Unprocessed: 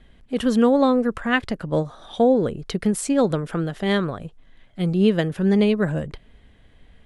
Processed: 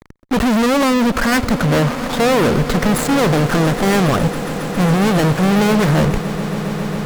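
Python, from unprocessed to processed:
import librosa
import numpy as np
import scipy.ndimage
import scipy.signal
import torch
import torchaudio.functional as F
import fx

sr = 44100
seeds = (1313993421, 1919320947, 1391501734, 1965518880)

y = scipy.ndimage.median_filter(x, 15, mode='constant')
y = fx.fuzz(y, sr, gain_db=40.0, gate_db=-44.0)
y = fx.echo_swell(y, sr, ms=137, loudest=8, wet_db=-18)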